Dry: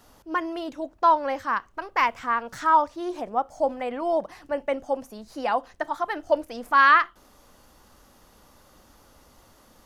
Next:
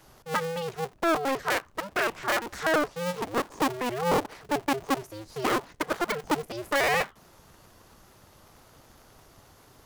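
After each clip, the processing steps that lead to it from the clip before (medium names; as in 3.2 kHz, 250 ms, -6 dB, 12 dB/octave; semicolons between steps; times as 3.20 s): cycle switcher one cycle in 2, inverted; peak limiter -16.5 dBFS, peak gain reduction 10.5 dB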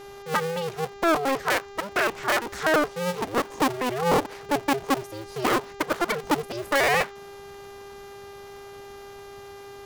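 wow and flutter 28 cents; mains buzz 400 Hz, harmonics 18, -46 dBFS -7 dB/octave; trim +3 dB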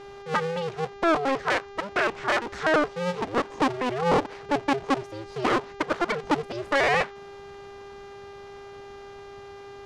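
distance through air 98 m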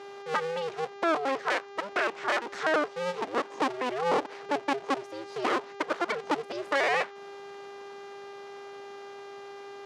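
high-pass 300 Hz 12 dB/octave; in parallel at -0.5 dB: compression, threshold -32 dBFS, peak gain reduction 13.5 dB; on the sum: trim -5.5 dB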